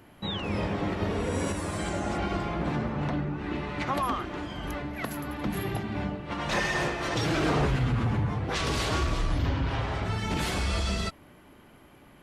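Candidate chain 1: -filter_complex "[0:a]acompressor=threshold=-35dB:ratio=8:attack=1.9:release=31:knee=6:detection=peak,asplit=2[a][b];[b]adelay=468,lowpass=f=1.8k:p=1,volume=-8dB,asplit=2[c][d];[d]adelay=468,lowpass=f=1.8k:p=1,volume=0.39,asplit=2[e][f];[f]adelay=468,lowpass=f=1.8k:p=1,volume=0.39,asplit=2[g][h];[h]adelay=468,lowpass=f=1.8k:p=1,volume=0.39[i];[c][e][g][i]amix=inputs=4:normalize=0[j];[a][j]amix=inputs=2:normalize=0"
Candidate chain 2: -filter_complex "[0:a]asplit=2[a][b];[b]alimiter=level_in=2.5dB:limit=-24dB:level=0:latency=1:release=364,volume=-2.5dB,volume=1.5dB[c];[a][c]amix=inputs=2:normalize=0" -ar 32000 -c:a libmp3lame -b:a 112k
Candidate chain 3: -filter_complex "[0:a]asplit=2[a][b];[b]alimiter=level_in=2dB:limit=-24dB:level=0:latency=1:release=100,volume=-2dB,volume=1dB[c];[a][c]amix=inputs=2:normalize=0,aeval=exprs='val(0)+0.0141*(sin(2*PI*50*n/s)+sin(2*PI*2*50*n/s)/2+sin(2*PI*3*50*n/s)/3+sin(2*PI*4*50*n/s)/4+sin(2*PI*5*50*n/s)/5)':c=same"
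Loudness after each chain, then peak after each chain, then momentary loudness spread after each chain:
-38.0, -26.5, -25.5 LUFS; -25.0, -14.0, -13.0 dBFS; 2, 6, 6 LU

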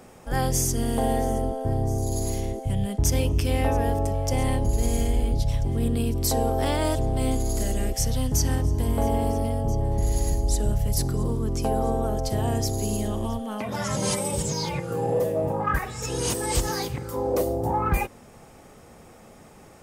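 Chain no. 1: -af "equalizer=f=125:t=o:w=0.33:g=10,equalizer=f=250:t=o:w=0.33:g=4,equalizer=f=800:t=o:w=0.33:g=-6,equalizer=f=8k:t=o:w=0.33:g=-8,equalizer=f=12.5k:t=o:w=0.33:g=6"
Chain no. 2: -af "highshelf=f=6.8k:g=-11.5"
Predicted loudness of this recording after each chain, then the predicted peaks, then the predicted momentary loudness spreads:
-24.0, -26.5 LUFS; -9.5, -12.0 dBFS; 5, 4 LU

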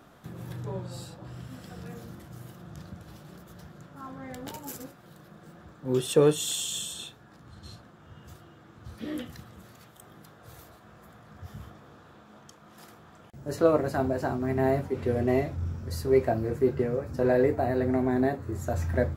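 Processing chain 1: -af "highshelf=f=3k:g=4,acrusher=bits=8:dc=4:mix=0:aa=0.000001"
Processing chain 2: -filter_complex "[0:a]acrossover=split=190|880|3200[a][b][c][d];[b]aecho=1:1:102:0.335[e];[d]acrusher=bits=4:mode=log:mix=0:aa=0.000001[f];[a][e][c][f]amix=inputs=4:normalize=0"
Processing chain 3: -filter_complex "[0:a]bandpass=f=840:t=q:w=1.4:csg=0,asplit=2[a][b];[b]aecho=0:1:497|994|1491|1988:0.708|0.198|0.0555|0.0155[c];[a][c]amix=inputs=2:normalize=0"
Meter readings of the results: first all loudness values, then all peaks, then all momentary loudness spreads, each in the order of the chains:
-27.5, -27.5, -32.0 LUFS; -7.5, -8.5, -14.0 dBFS; 21, 21, 21 LU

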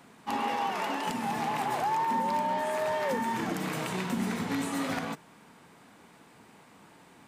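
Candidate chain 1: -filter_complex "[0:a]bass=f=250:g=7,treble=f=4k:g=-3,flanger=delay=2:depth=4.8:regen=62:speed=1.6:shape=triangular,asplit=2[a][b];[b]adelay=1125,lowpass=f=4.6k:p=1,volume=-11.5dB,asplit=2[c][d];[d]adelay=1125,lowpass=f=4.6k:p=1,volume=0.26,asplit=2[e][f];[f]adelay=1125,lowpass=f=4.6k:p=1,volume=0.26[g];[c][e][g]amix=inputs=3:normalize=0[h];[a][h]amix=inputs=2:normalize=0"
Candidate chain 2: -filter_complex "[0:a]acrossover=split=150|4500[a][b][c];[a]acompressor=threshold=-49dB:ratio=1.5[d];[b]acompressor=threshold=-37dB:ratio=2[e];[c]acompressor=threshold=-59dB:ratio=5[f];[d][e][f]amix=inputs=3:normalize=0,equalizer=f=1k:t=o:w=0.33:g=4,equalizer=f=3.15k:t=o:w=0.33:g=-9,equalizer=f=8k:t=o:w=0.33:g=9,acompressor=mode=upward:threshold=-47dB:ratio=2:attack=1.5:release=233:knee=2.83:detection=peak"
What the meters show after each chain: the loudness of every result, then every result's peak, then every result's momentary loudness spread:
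-34.0, -35.0 LUFS; -19.5, -23.0 dBFS; 14, 21 LU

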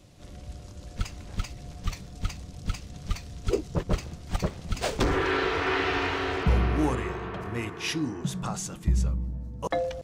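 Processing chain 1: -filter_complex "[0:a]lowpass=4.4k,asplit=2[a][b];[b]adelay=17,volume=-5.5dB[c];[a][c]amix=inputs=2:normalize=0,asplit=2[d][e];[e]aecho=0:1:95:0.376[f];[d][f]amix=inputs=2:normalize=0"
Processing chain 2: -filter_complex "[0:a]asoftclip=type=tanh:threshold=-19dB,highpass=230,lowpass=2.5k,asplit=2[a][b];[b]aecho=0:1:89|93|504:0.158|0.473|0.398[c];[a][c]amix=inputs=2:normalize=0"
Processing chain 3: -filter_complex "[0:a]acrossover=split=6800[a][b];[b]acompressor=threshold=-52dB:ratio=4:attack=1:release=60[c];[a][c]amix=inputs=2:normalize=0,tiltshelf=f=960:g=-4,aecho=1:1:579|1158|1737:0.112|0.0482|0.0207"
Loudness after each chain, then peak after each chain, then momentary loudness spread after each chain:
-28.0, -31.5, -31.0 LUFS; -9.5, -15.5, -13.0 dBFS; 14, 19, 14 LU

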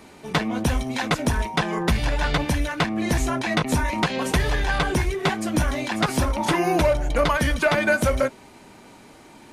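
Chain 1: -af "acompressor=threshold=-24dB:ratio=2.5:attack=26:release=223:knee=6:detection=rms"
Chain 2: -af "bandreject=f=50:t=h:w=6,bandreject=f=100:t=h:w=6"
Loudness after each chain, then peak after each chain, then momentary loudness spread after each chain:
-27.0, -23.0 LUFS; -12.5, -10.5 dBFS; 3, 4 LU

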